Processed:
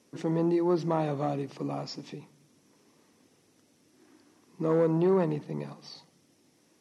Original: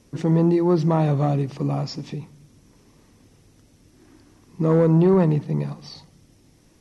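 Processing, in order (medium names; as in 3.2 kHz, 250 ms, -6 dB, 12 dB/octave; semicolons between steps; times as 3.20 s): high-pass 240 Hz 12 dB/octave; trim -5.5 dB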